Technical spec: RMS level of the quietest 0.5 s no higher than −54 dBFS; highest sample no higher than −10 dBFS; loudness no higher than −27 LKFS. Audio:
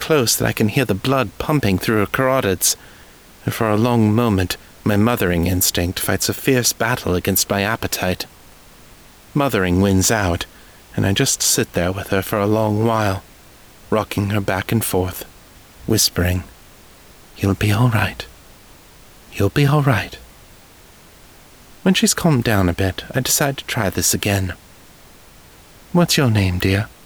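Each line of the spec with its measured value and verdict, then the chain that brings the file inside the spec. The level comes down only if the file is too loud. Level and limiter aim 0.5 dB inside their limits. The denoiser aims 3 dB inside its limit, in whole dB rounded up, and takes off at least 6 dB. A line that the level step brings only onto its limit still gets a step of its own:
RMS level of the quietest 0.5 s −45 dBFS: out of spec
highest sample −4.5 dBFS: out of spec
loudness −18.0 LKFS: out of spec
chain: level −9.5 dB

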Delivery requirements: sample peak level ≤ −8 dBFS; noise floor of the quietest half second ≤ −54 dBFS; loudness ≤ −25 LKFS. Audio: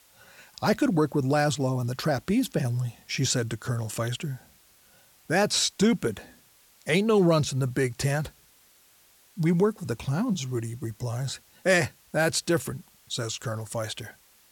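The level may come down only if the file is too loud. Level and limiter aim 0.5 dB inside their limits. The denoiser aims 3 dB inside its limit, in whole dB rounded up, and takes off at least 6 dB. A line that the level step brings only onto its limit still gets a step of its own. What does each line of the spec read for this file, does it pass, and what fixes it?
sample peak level −9.5 dBFS: in spec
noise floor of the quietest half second −59 dBFS: in spec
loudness −26.5 LKFS: in spec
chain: no processing needed

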